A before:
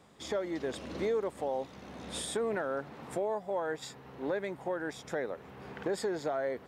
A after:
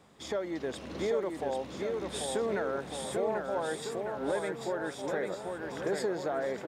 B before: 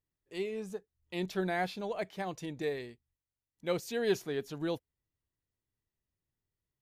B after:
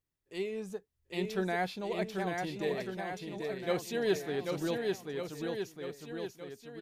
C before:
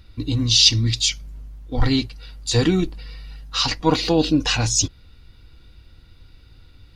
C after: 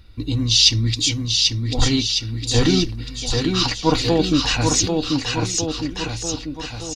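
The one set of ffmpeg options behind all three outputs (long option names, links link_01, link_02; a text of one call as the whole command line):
ffmpeg -i in.wav -af "aecho=1:1:790|1501|2141|2717|3235:0.631|0.398|0.251|0.158|0.1" out.wav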